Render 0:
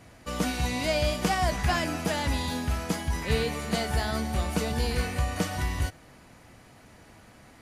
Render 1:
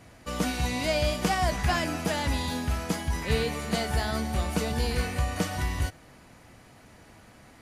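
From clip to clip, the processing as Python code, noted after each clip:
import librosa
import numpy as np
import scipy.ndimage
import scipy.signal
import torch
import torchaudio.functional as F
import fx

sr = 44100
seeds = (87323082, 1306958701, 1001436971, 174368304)

y = x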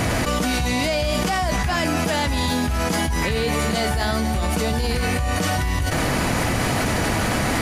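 y = fx.env_flatten(x, sr, amount_pct=100)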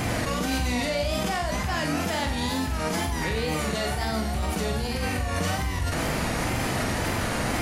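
y = fx.wow_flutter(x, sr, seeds[0], rate_hz=2.1, depth_cents=95.0)
y = fx.room_flutter(y, sr, wall_m=7.7, rt60_s=0.43)
y = F.gain(torch.from_numpy(y), -6.5).numpy()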